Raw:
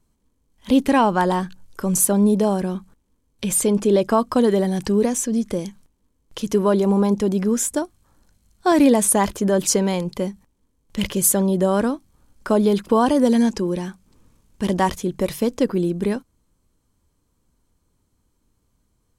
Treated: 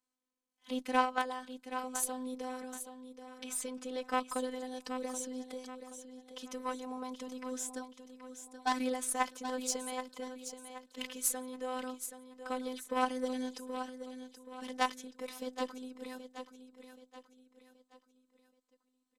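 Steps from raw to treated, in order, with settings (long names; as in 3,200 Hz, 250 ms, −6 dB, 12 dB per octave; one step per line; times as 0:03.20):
meter weighting curve A
harmonic generator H 3 −13 dB, 4 −45 dB, 5 −34 dB, 6 −36 dB, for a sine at −5.5 dBFS
in parallel at −3 dB: output level in coarse steps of 23 dB
on the sum: phases set to zero 255 Hz
repeating echo 777 ms, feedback 40%, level −10 dB
level −7.5 dB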